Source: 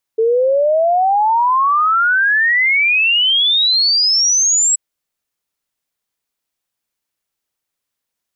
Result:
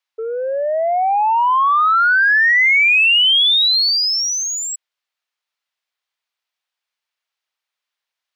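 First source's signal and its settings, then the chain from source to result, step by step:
log sweep 440 Hz -> 7.8 kHz 4.58 s -10.5 dBFS
treble shelf 2.7 kHz +6.5 dB; saturation -6 dBFS; three-band isolator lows -23 dB, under 580 Hz, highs -19 dB, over 4.5 kHz

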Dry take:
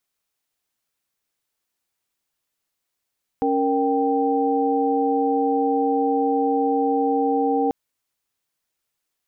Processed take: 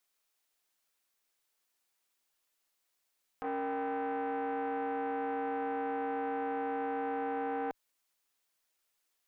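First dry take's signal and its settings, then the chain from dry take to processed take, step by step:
chord C#4/A#4/G5 sine, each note -22 dBFS 4.29 s
peaking EQ 95 Hz -14 dB 2.3 oct; peak limiter -26 dBFS; transformer saturation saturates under 660 Hz

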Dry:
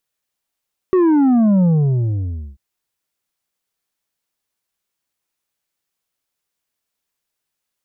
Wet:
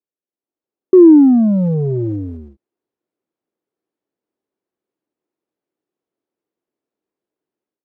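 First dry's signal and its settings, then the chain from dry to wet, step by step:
sub drop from 380 Hz, over 1.64 s, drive 6 dB, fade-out 0.94 s, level -11 dB
block-companded coder 5-bit; band-pass filter 340 Hz, Q 2.5; level rider gain up to 13.5 dB

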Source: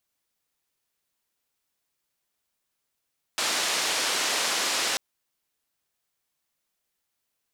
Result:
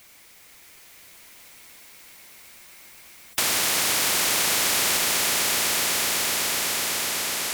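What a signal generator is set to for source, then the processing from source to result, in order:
noise band 340–6400 Hz, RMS -26.5 dBFS 1.59 s
peaking EQ 2.2 kHz +8.5 dB 0.36 oct; on a send: echo with a slow build-up 125 ms, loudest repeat 5, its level -9 dB; on the sum: spectrum-flattening compressor 4:1

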